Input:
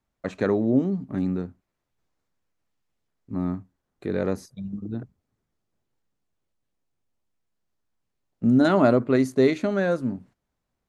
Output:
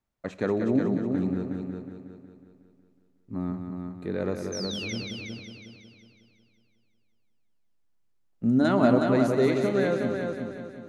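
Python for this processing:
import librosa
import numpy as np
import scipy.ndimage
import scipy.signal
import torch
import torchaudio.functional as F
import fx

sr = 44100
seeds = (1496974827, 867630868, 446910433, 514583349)

p1 = fx.spec_paint(x, sr, seeds[0], shape='fall', start_s=4.52, length_s=0.41, low_hz=2000.0, high_hz=6400.0, level_db=-33.0)
p2 = p1 + fx.echo_heads(p1, sr, ms=183, heads='first and second', feedback_pct=46, wet_db=-7, dry=0)
p3 = fx.rev_schroeder(p2, sr, rt60_s=1.5, comb_ms=27, drr_db=17.5)
y = F.gain(torch.from_numpy(p3), -4.0).numpy()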